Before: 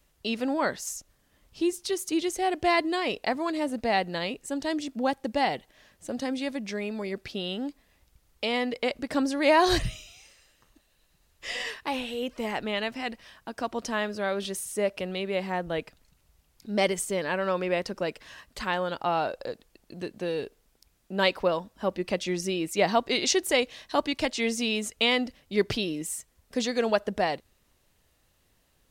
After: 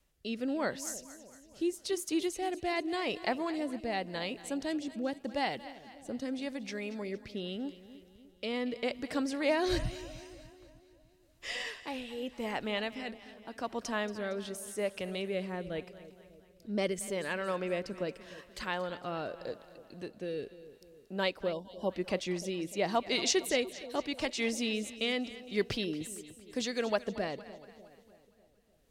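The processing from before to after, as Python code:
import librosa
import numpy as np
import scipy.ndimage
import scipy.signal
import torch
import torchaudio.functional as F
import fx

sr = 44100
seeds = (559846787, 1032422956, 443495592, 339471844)

y = fx.rotary(x, sr, hz=0.85)
y = fx.echo_split(y, sr, split_hz=670.0, low_ms=299, high_ms=230, feedback_pct=52, wet_db=-15.0)
y = fx.spec_box(y, sr, start_s=21.53, length_s=0.37, low_hz=1100.0, high_hz=2800.0, gain_db=-18)
y = y * 10.0 ** (-4.0 / 20.0)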